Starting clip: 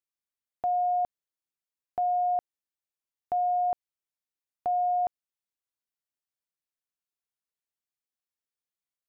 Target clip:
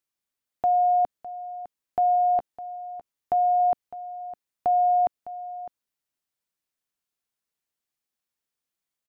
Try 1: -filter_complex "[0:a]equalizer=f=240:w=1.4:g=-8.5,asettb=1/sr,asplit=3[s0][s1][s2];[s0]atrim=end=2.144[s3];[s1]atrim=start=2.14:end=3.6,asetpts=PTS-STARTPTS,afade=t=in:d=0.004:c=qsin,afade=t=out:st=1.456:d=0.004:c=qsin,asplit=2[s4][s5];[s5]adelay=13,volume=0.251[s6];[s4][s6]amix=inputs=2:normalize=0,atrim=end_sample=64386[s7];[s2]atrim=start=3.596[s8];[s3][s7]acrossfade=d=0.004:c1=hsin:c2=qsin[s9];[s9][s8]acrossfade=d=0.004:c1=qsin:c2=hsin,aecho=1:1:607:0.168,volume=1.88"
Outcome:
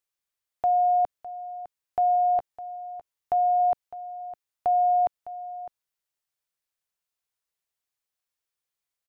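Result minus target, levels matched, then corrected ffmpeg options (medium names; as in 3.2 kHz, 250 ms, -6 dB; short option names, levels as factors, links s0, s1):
250 Hz band -6.5 dB
-filter_complex "[0:a]equalizer=f=240:w=1.4:g=2,asettb=1/sr,asplit=3[s0][s1][s2];[s0]atrim=end=2.144[s3];[s1]atrim=start=2.14:end=3.6,asetpts=PTS-STARTPTS,afade=t=in:d=0.004:c=qsin,afade=t=out:st=1.456:d=0.004:c=qsin,asplit=2[s4][s5];[s5]adelay=13,volume=0.251[s6];[s4][s6]amix=inputs=2:normalize=0,atrim=end_sample=64386[s7];[s2]atrim=start=3.596[s8];[s3][s7]acrossfade=d=0.004:c1=hsin:c2=qsin[s9];[s9][s8]acrossfade=d=0.004:c1=qsin:c2=hsin,aecho=1:1:607:0.168,volume=1.88"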